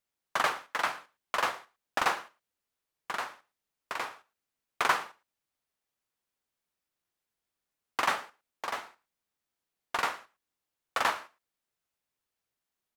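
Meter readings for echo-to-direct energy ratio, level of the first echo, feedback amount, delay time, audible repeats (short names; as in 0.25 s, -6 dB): -22.0 dB, -22.0 dB, no steady repeat, 0.112 s, 1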